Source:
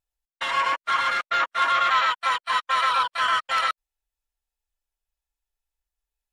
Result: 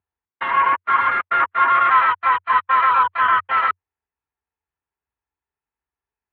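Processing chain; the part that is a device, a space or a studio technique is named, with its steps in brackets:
bass cabinet (loudspeaker in its box 74–2,200 Hz, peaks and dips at 91 Hz +10 dB, 230 Hz +3 dB, 400 Hz +5 dB, 580 Hz −8 dB, 1,000 Hz +4 dB)
level +5 dB

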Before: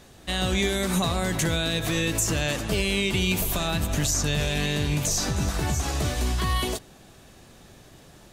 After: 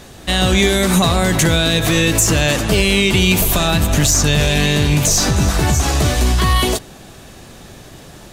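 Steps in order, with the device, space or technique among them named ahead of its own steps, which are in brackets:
parallel distortion (in parallel at −8.5 dB: hard clipping −26 dBFS, distortion −9 dB)
on the sum: level +9 dB

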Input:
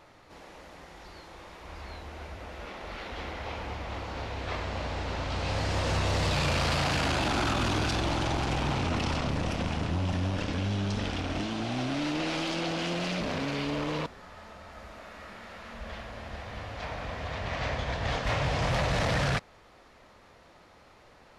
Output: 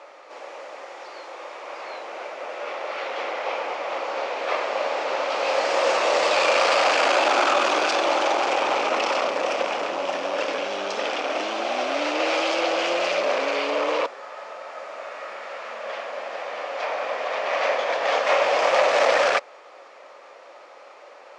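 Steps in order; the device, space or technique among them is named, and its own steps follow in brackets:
phone speaker on a table (loudspeaker in its box 380–7,900 Hz, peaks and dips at 560 Hz +9 dB, 800 Hz +3 dB, 1,200 Hz +5 dB, 2,400 Hz +4 dB, 3,900 Hz −3 dB)
level +7 dB

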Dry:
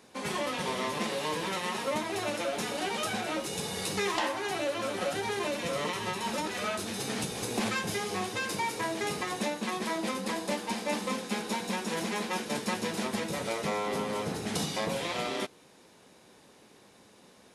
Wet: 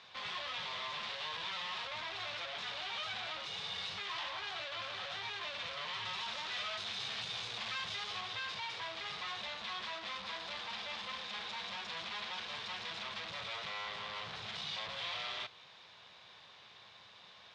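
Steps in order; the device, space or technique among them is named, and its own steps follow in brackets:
scooped metal amplifier (tube saturation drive 44 dB, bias 0.55; loudspeaker in its box 87–4,200 Hz, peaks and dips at 110 Hz +4 dB, 320 Hz +6 dB, 670 Hz +4 dB, 1,100 Hz +5 dB, 3,500 Hz +5 dB; guitar amp tone stack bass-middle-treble 10-0-10)
0:06.05–0:08.21: high-shelf EQ 5,300 Hz +6 dB
level +10 dB

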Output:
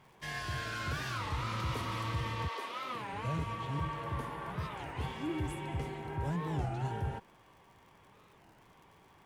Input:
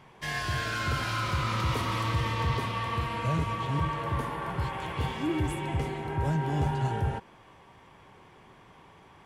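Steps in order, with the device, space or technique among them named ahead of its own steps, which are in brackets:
0:02.47–0:03.13: high-pass filter 460 Hz → 140 Hz 24 dB per octave
warped LP (wow of a warped record 33 1/3 rpm, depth 250 cents; surface crackle 110 per second −47 dBFS; pink noise bed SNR 40 dB)
level −7 dB

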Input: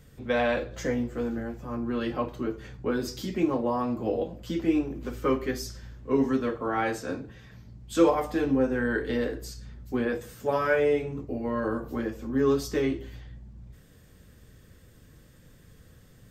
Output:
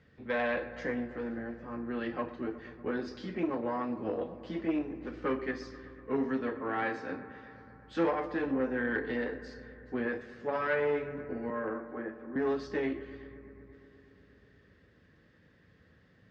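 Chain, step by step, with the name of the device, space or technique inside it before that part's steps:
0:11.50–0:12.36: three-way crossover with the lows and the highs turned down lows −12 dB, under 260 Hz, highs −23 dB, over 2,100 Hz
analogue delay pedal into a guitar amplifier (bucket-brigade delay 121 ms, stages 2,048, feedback 80%, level −17 dB; tube saturation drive 18 dB, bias 0.45; loudspeaker in its box 92–4,300 Hz, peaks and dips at 130 Hz −7 dB, 1,800 Hz +7 dB, 3,400 Hz −4 dB)
level −4 dB

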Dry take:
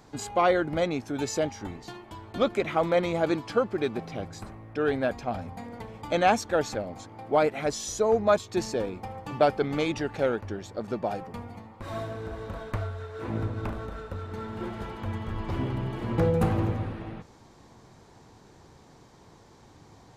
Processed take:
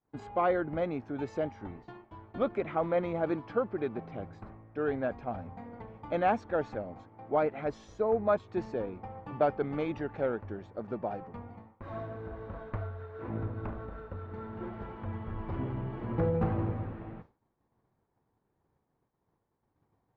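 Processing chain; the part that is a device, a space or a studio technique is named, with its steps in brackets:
hearing-loss simulation (low-pass filter 1,800 Hz 12 dB per octave; downward expander −41 dBFS)
level −5 dB

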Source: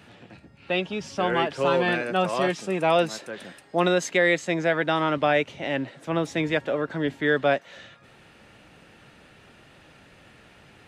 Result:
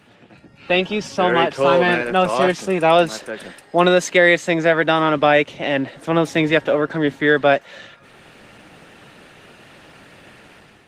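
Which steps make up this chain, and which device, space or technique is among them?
video call (high-pass filter 130 Hz 6 dB per octave; automatic gain control gain up to 9 dB; level +1 dB; Opus 20 kbit/s 48,000 Hz)

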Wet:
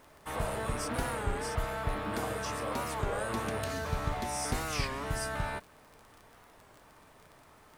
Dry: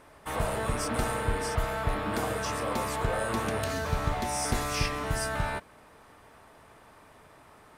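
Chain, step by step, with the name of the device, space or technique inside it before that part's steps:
warped LP (wow of a warped record 33 1/3 rpm, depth 160 cents; surface crackle 25 per second −38 dBFS; pink noise bed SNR 31 dB)
level −4 dB

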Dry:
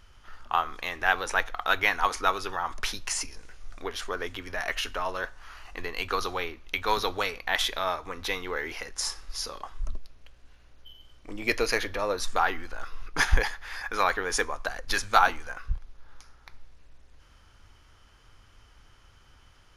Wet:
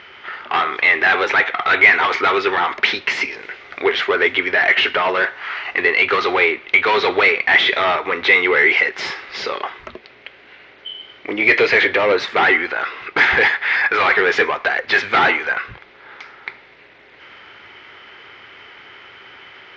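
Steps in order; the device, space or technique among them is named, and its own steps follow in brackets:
overdrive pedal into a guitar cabinet (mid-hump overdrive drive 30 dB, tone 7,300 Hz, clips at −4 dBFS; loudspeaker in its box 110–3,600 Hz, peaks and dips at 390 Hz +9 dB, 1,100 Hz −4 dB, 2,100 Hz +9 dB)
level −3 dB

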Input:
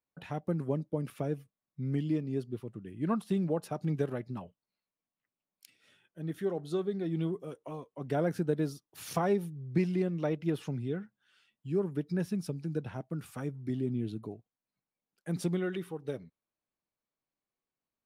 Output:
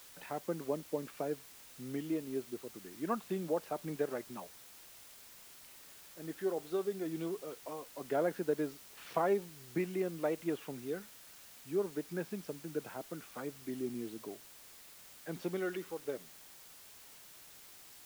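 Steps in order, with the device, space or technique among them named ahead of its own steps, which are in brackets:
wax cylinder (band-pass filter 350–2,700 Hz; tape wow and flutter; white noise bed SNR 16 dB)

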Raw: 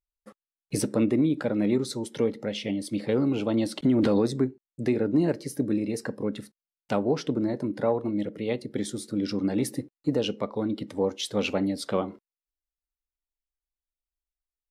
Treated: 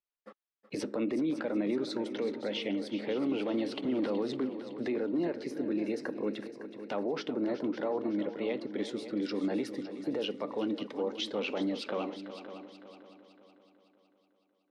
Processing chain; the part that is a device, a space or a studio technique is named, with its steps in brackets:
DJ mixer with the lows and highs turned down (three-way crossover with the lows and the highs turned down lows −23 dB, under 230 Hz, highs −24 dB, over 4,600 Hz; brickwall limiter −24.5 dBFS, peak gain reduction 9.5 dB)
echo machine with several playback heads 186 ms, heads second and third, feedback 46%, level −12.5 dB

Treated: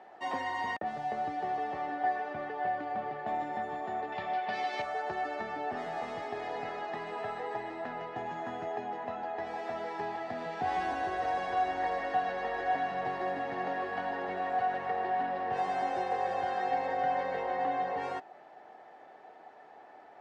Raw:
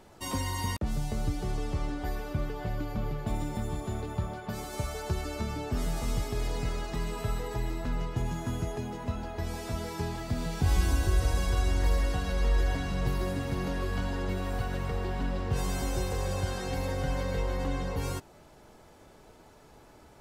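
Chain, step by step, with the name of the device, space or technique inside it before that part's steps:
0:04.12–0:04.82: flat-topped bell 3,400 Hz +11.5 dB
tin-can telephone (band-pass filter 400–2,400 Hz; hollow resonant body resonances 750/1,800 Hz, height 15 dB, ringing for 40 ms)

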